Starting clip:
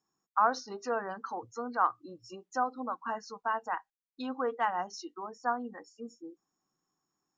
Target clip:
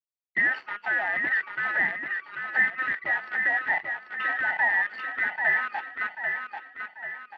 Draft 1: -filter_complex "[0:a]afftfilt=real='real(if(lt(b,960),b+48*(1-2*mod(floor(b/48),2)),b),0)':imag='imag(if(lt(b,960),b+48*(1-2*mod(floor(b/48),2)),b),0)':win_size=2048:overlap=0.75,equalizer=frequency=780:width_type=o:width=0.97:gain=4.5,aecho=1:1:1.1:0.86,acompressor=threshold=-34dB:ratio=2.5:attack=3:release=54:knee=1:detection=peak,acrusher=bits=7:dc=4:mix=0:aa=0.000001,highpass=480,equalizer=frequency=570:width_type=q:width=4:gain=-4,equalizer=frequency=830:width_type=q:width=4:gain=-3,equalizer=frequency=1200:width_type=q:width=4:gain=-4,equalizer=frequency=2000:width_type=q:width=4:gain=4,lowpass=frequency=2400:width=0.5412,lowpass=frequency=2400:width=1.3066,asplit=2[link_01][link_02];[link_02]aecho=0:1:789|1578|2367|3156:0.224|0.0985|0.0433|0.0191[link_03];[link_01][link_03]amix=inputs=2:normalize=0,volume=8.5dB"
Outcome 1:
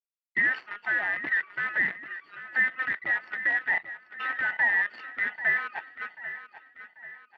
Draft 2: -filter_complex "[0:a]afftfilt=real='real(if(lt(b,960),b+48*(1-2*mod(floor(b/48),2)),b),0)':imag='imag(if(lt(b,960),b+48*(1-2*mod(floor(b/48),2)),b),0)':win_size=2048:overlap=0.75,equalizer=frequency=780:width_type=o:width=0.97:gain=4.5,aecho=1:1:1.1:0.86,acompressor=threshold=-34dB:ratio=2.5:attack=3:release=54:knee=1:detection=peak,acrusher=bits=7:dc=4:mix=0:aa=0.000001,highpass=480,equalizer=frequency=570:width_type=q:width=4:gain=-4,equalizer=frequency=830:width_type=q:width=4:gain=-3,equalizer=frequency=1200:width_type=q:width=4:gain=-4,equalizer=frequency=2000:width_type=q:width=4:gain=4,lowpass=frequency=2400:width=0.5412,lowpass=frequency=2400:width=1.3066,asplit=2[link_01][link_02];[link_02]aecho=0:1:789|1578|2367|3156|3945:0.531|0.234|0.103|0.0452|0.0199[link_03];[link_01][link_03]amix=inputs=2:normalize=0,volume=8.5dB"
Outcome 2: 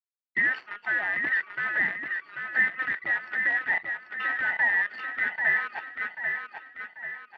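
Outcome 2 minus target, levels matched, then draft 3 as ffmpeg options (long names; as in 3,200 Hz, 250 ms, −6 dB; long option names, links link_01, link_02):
1,000 Hz band −4.5 dB
-filter_complex "[0:a]afftfilt=real='real(if(lt(b,960),b+48*(1-2*mod(floor(b/48),2)),b),0)':imag='imag(if(lt(b,960),b+48*(1-2*mod(floor(b/48),2)),b),0)':win_size=2048:overlap=0.75,equalizer=frequency=780:width_type=o:width=0.97:gain=14,aecho=1:1:1.1:0.86,acompressor=threshold=-34dB:ratio=2.5:attack=3:release=54:knee=1:detection=peak,acrusher=bits=7:dc=4:mix=0:aa=0.000001,highpass=480,equalizer=frequency=570:width_type=q:width=4:gain=-4,equalizer=frequency=830:width_type=q:width=4:gain=-3,equalizer=frequency=1200:width_type=q:width=4:gain=-4,equalizer=frequency=2000:width_type=q:width=4:gain=4,lowpass=frequency=2400:width=0.5412,lowpass=frequency=2400:width=1.3066,asplit=2[link_01][link_02];[link_02]aecho=0:1:789|1578|2367|3156|3945:0.531|0.234|0.103|0.0452|0.0199[link_03];[link_01][link_03]amix=inputs=2:normalize=0,volume=8.5dB"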